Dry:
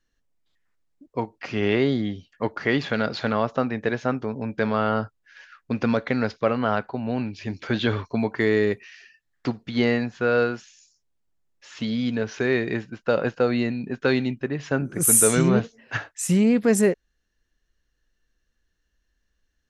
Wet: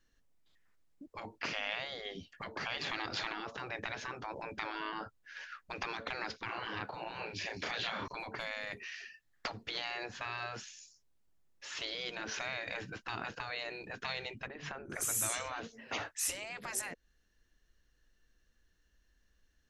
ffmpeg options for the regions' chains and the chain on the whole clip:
-filter_complex "[0:a]asettb=1/sr,asplit=3[a][b][c];[a]atrim=end=6.454[d];[b]atrim=start=6.45:end=8.08,asetpts=PTS-STARTPTS,afade=t=in:d=0.004:c=qsin,afade=t=out:st=1.626:d=0.004:c=qsin,highpass=86,asplit=2[e][f];[f]adelay=35,volume=-3.5dB[g];[e][g]amix=inputs=2:normalize=0,atrim=end_sample=71883[h];[c]atrim=start=8.076[i];[d][h]acrossfade=d=0.004:c1=hsin:c2=qsin[j];[j][i]acrossfade=d=0.004:c1=qsin:c2=hsin,asettb=1/sr,asplit=3[k][l][m];[k]atrim=end=14.474[n];[l]atrim=start=14.47:end=14.9,asetpts=PTS-STARTPTS,afade=t=in:d=0.004:c=qsin,afade=t=out:st=0.426:d=0.004:c=qsin,bass=f=250:g=8,treble=f=4k:g=-9,acompressor=threshold=-35dB:ratio=2.5:attack=3.2:release=140:knee=1:detection=peak[o];[m]atrim=start=14.896[p];[n][o]acrossfade=d=0.004:c1=hsin:c2=qsin[q];[q][p]acrossfade=d=0.004:c1=qsin:c2=hsin,acompressor=threshold=-24dB:ratio=6,afftfilt=real='re*lt(hypot(re,im),0.0631)':imag='im*lt(hypot(re,im),0.0631)':win_size=1024:overlap=0.75,volume=1dB"

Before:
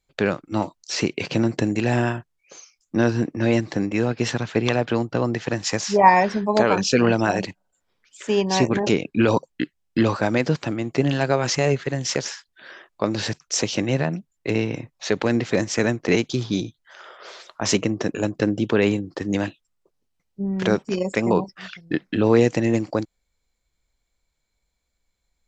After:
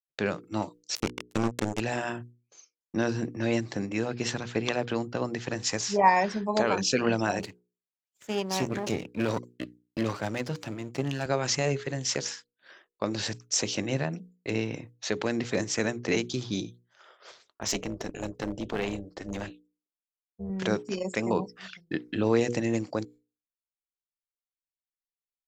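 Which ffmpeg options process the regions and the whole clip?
-filter_complex "[0:a]asettb=1/sr,asplit=3[a][b][c];[a]atrim=end=0.954[d];[b]atrim=start=0.95:end=1.8,asetpts=PTS-STARTPTS,afade=t=in:d=0.004:c=qsin,afade=t=out:st=0.846:d=0.004:c=qsin,equalizer=f=2.4k:t=o:w=2.5:g=-2.5,acrusher=bits=2:mix=0:aa=0.5[e];[c]atrim=start=1.796[f];[d][e]acrossfade=d=0.004:c1=hsin:c2=qsin[g];[g][f]acrossfade=d=0.004:c1=qsin:c2=hsin,asettb=1/sr,asplit=3[h][i][j];[h]atrim=end=7.394[k];[i]atrim=start=7.39:end=11.26,asetpts=PTS-STARTPTS,afade=t=in:d=0.004:c=qsin,afade=t=out:st=3.866:d=0.004:c=qsin,aeval=exprs='if(lt(val(0),0),0.251*val(0),val(0))':c=same,highpass=f=83:w=0.5412,highpass=f=83:w=1.3066[l];[j]atrim=start=11.256[m];[k][l]acrossfade=d=0.004:c1=hsin:c2=qsin[n];[n][m]acrossfade=d=0.004:c1=qsin:c2=hsin,asettb=1/sr,asplit=3[o][p][q];[o]atrim=end=17.314[r];[p]atrim=start=17.31:end=20.5,asetpts=PTS-STARTPTS,afade=t=in:d=0.004:c=qsin,afade=t=out:st=3.186:d=0.004:c=qsin,tremolo=f=280:d=0.75,aeval=exprs='clip(val(0),-1,0.126)':c=same[s];[q]atrim=start=20.496[t];[r][s]acrossfade=d=0.004:c1=hsin:c2=qsin[u];[u][t]acrossfade=d=0.004:c1=qsin:c2=hsin,agate=range=-33dB:threshold=-37dB:ratio=3:detection=peak,highshelf=f=5k:g=7,bandreject=f=60:t=h:w=6,bandreject=f=120:t=h:w=6,bandreject=f=180:t=h:w=6,bandreject=f=240:t=h:w=6,bandreject=f=300:t=h:w=6,bandreject=f=360:t=h:w=6,bandreject=f=420:t=h:w=6,bandreject=f=480:t=h:w=6,volume=-7dB"

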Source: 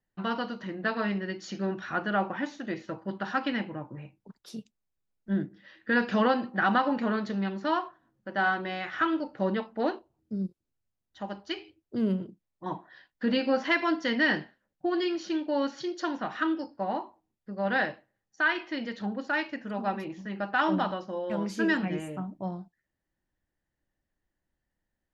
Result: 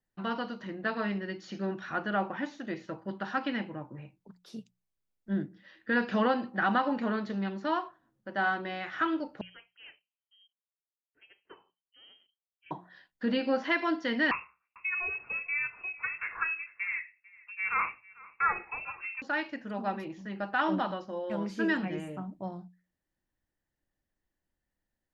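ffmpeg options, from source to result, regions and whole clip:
-filter_complex "[0:a]asettb=1/sr,asplit=3[a][b][c];[a]atrim=end=9.414[d];[b]atrim=start=9.41:end=12.71,asetpts=PTS-STARTPTS,afade=t=in:d=0.004:c=qsin,afade=t=out:st=3.296:d=0.004:c=qsin,aderivative,lowpass=f=2.9k:t=q:w=0.5098,lowpass=f=2.9k:t=q:w=0.6013,lowpass=f=2.9k:t=q:w=0.9,lowpass=f=2.9k:t=q:w=2.563,afreqshift=-3400[e];[c]atrim=start=12.706[f];[d][e]acrossfade=d=0.004:c1=hsin:c2=qsin[g];[g][f]acrossfade=d=0.004:c1=qsin:c2=hsin,asettb=1/sr,asplit=3[h][i][j];[h]atrim=end=14.314[k];[i]atrim=start=14.31:end=19.22,asetpts=PTS-STARTPTS,afade=t=in:d=0.004:c=qsin,afade=t=out:st=4.906:d=0.004:c=qsin,aemphasis=mode=production:type=bsi,aecho=1:1:446:0.075,atrim=end_sample=216531,lowpass=f=2.5k:t=q:w=0.5098,lowpass=f=2.5k:t=q:w=0.6013,lowpass=f=2.5k:t=q:w=0.9,lowpass=f=2.5k:t=q:w=2.563,afreqshift=-2900[l];[j]atrim=start=19.216[m];[k][l]acrossfade=d=0.004:c1=hsin:c2=qsin[n];[n][m]acrossfade=d=0.004:c1=qsin:c2=hsin,acrossover=split=4400[o][p];[p]acompressor=threshold=-55dB:ratio=4:attack=1:release=60[q];[o][q]amix=inputs=2:normalize=0,bandreject=f=60:t=h:w=6,bandreject=f=120:t=h:w=6,bandreject=f=180:t=h:w=6,volume=-2.5dB"

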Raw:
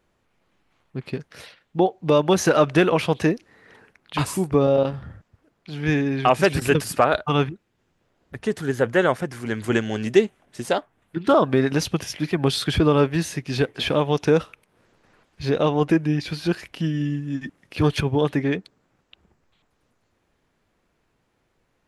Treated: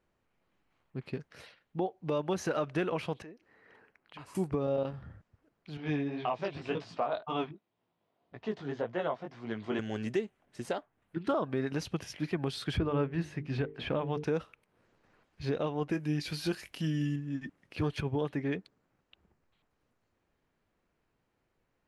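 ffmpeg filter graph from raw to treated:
-filter_complex "[0:a]asettb=1/sr,asplit=3[a][b][c];[a]atrim=end=3.224[d];[b]atrim=start=3.22:end=4.35,asetpts=PTS-STARTPTS,afade=t=in:d=0.004:c=qsin,afade=t=out:st=1.126:d=0.004:c=qsin,bass=f=250:g=-6,treble=f=4k:g=-7,bandreject=f=3.6k:w=17,acompressor=threshold=-42dB:ratio=2.5:attack=3.2:release=140:knee=1:detection=peak[e];[c]atrim=start=4.346[f];[d][e]acrossfade=d=0.004:c1=hsin:c2=qsin[g];[g][f]acrossfade=d=0.004:c1=qsin:c2=hsin,asettb=1/sr,asplit=3[h][i][j];[h]atrim=end=5.774[k];[i]atrim=start=5.77:end=9.79,asetpts=PTS-STARTPTS,afade=t=in:d=0.004:c=qsin,afade=t=out:st=4.016:d=0.004:c=qsin,flanger=delay=16.5:depth=4.5:speed=1.9,highpass=130,equalizer=f=680:t=q:w=4:g=8,equalizer=f=1k:t=q:w=4:g=6,equalizer=f=1.6k:t=q:w=4:g=-5,equalizer=f=3.5k:t=q:w=4:g=5,lowpass=f=5.3k:w=0.5412,lowpass=f=5.3k:w=1.3066[l];[j]atrim=start=9.786[m];[k][l]acrossfade=d=0.004:c1=hsin:c2=qsin[n];[n][m]acrossfade=d=0.004:c1=qsin:c2=hsin,asettb=1/sr,asplit=3[o][p][q];[o]atrim=end=12.774[r];[p]atrim=start=12.77:end=14.24,asetpts=PTS-STARTPTS,afade=t=in:d=0.004:c=qsin,afade=t=out:st=1.466:d=0.004:c=qsin,bass=f=250:g=3,treble=f=4k:g=-13,bandreject=f=50:t=h:w=6,bandreject=f=100:t=h:w=6,bandreject=f=150:t=h:w=6,bandreject=f=200:t=h:w=6,bandreject=f=250:t=h:w=6,bandreject=f=300:t=h:w=6,bandreject=f=350:t=h:w=6,bandreject=f=400:t=h:w=6,bandreject=f=450:t=h:w=6[s];[q]atrim=start=14.236[t];[r][s]acrossfade=d=0.004:c1=hsin:c2=qsin[u];[u][t]acrossfade=d=0.004:c1=qsin:c2=hsin,asettb=1/sr,asplit=3[v][w][x];[v]atrim=end=15.924[y];[w]atrim=start=15.92:end=17.16,asetpts=PTS-STARTPTS,afade=t=in:d=0.004:c=qsin,afade=t=out:st=1.236:d=0.004:c=qsin,aemphasis=mode=production:type=75kf,asplit=2[z][aa];[aa]adelay=20,volume=-13.5dB[ab];[z][ab]amix=inputs=2:normalize=0,atrim=end_sample=54684[ac];[x]atrim=start=17.156[ad];[y][ac]acrossfade=d=0.004:c1=hsin:c2=qsin[ae];[ae][ad]acrossfade=d=0.004:c1=qsin:c2=hsin,highshelf=f=6k:g=-7.5,bandreject=f=3.5k:w=29,alimiter=limit=-13dB:level=0:latency=1:release=392,volume=-8.5dB"

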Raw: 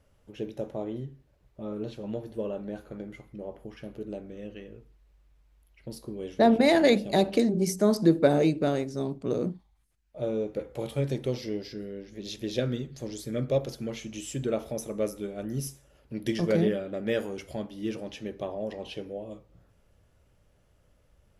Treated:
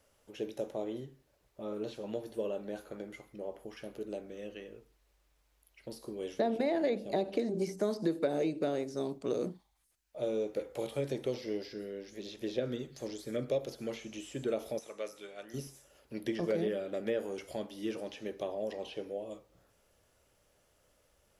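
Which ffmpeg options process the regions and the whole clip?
-filter_complex "[0:a]asettb=1/sr,asplit=3[a][b][c];[a]atrim=end=14.794[d];[b]atrim=start=14.79:end=15.54,asetpts=PTS-STARTPTS,afade=t=in:d=0.004:c=qsin,afade=t=out:st=0.746:d=0.004:c=qsin,aeval=exprs='val(0)+0.00891*(sin(2*PI*50*n/s)+sin(2*PI*2*50*n/s)/2+sin(2*PI*3*50*n/s)/3+sin(2*PI*4*50*n/s)/4+sin(2*PI*5*50*n/s)/5)':c=same,bandpass=f=2.5k:t=q:w=0.54[e];[c]atrim=start=15.536[f];[d][e]acrossfade=d=0.004:c1=hsin:c2=qsin[g];[g][f]acrossfade=d=0.004:c1=qsin:c2=hsin,acrossover=split=3600[h][i];[i]acompressor=threshold=-54dB:ratio=4:attack=1:release=60[j];[h][j]amix=inputs=2:normalize=0,bass=f=250:g=-12,treble=f=4k:g=6,acrossover=split=690|1700[k][l][m];[k]acompressor=threshold=-29dB:ratio=4[n];[l]acompressor=threshold=-48dB:ratio=4[o];[m]acompressor=threshold=-49dB:ratio=4[p];[n][o][p]amix=inputs=3:normalize=0"

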